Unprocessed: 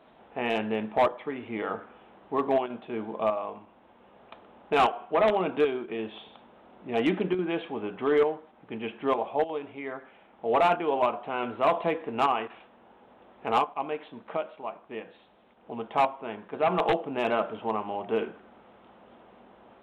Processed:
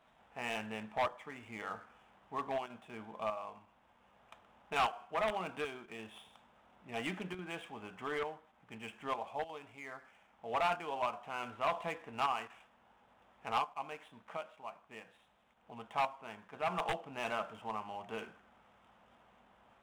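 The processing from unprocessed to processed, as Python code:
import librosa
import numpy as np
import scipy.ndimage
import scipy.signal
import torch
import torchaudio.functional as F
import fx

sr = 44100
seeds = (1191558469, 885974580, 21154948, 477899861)

y = scipy.ndimage.median_filter(x, 9, mode='constant')
y = fx.peak_eq(y, sr, hz=360.0, db=-14.5, octaves=1.8)
y = y * 10.0 ** (-4.5 / 20.0)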